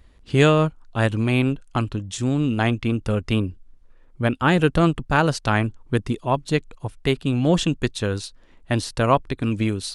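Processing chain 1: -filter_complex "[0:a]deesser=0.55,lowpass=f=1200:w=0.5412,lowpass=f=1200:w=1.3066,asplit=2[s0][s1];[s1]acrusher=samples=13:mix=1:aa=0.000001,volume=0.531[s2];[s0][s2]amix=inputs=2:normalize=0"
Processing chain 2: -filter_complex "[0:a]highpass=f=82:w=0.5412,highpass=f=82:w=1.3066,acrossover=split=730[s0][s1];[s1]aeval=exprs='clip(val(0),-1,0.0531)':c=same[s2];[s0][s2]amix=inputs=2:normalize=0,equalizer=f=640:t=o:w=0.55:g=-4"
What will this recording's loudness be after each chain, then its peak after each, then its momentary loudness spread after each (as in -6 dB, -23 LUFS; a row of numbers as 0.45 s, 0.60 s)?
-19.5 LUFS, -23.0 LUFS; -1.5 dBFS, -2.5 dBFS; 8 LU, 8 LU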